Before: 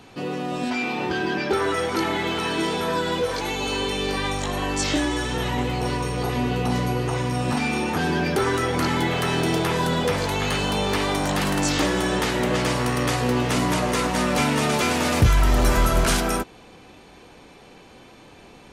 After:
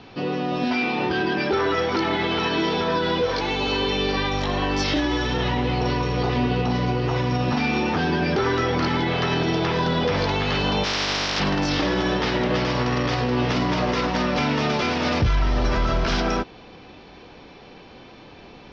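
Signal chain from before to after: 10.83–11.39 spectral contrast lowered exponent 0.14; Chebyshev low-pass 5500 Hz, order 5; limiter -16.5 dBFS, peak gain reduction 7.5 dB; gain +3 dB

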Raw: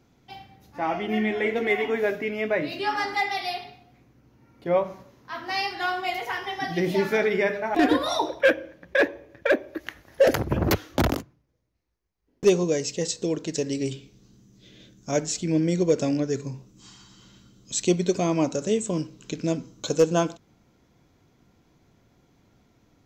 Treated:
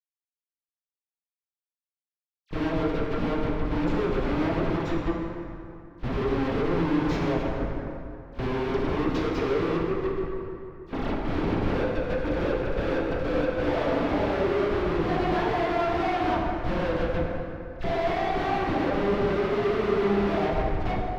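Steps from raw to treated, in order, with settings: whole clip reversed; HPF 350 Hz 12 dB/oct; tilt shelf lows +6 dB, about 1100 Hz; analogue delay 0.167 s, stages 4096, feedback 47%, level -18.5 dB; compressor 16:1, threshold -29 dBFS, peak gain reduction 19.5 dB; Schmitt trigger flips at -39.5 dBFS; pitch shift -2.5 st; dispersion lows, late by 62 ms, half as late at 2100 Hz; gate -38 dBFS, range -11 dB; air absorption 340 m; plate-style reverb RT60 3 s, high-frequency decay 0.55×, DRR -1.5 dB; speed mistake 44.1 kHz file played as 48 kHz; gain +7.5 dB

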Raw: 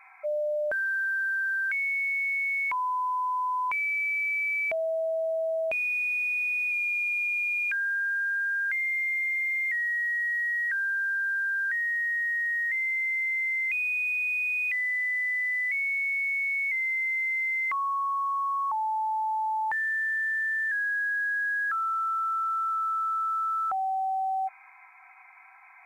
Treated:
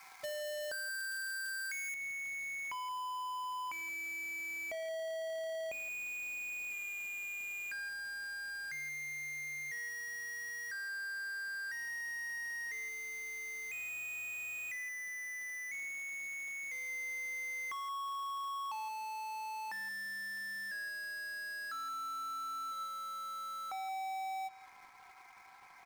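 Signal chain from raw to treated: half-waves squared off; high shelf 3100 Hz +2 dB, from 1.94 s -10 dB; compressor, threshold -35 dBFS, peak gain reduction 10 dB; speakerphone echo 0.17 s, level -12 dB; gain -6 dB

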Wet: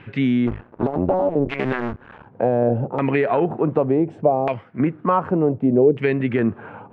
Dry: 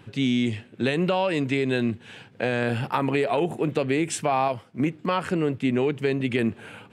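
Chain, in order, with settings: 0.47–2.27 cycle switcher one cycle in 2, muted; dynamic EQ 1800 Hz, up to -5 dB, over -37 dBFS, Q 0.71; LFO low-pass saw down 0.67 Hz 470–2300 Hz; gain +4.5 dB

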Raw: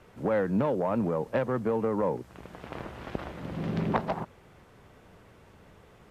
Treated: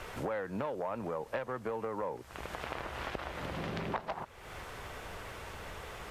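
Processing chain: bell 190 Hz -13.5 dB 2.5 oct; compressor 4:1, threshold -53 dBFS, peak gain reduction 22.5 dB; gain +15.5 dB

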